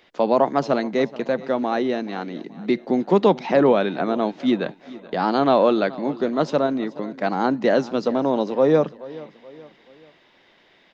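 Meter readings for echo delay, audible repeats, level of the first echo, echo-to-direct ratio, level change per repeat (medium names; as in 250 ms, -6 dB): 428 ms, 3, -19.0 dB, -18.0 dB, -7.5 dB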